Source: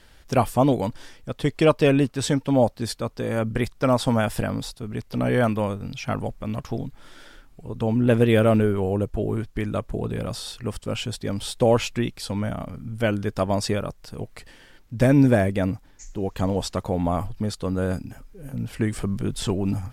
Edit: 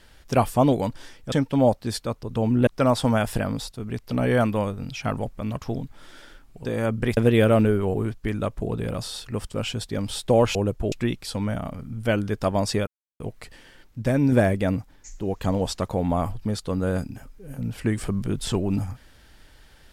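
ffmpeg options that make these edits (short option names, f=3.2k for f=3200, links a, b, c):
-filter_complex "[0:a]asplit=13[a][b][c][d][e][f][g][h][i][j][k][l][m];[a]atrim=end=1.322[n];[b]atrim=start=2.268:end=3.182[o];[c]atrim=start=7.678:end=8.122[p];[d]atrim=start=3.698:end=7.682[q];[e]atrim=start=3.178:end=3.702[r];[f]atrim=start=8.118:end=8.892[s];[g]atrim=start=9.258:end=11.872[t];[h]atrim=start=8.888:end=9.262[u];[i]atrim=start=11.868:end=13.82,asetpts=PTS-STARTPTS,afade=t=out:st=1.948:d=0.004:c=hsin[v];[j]atrim=start=13.82:end=14.15,asetpts=PTS-STARTPTS,volume=0[w];[k]atrim=start=14.15:end=14.972,asetpts=PTS-STARTPTS,afade=t=in:d=0.004:c=hsin[x];[l]atrim=start=14.968:end=15.272,asetpts=PTS-STARTPTS,volume=-4.5dB[y];[m]atrim=start=15.268[z];[n][o]acrossfade=d=0.004:c1=hsin:c2=hsin[aa];[aa][p]acrossfade=d=0.004:c1=hsin:c2=hsin[ab];[ab][q]acrossfade=d=0.004:c1=hsin:c2=hsin[ac];[ac][r]acrossfade=d=0.004:c1=hsin:c2=hsin[ad];[ad][s]acrossfade=d=0.004:c1=hsin:c2=hsin[ae];[ae][t]acrossfade=d=0.004:c1=hsin:c2=hsin[af];[af][u]acrossfade=d=0.004:c1=hsin:c2=hsin[ag];[v][w][x]concat=n=3:v=0:a=1[ah];[ag][ah]acrossfade=d=0.004:c1=hsin:c2=hsin[ai];[ai][y]acrossfade=d=0.004:c1=hsin:c2=hsin[aj];[aj][z]acrossfade=d=0.004:c1=hsin:c2=hsin"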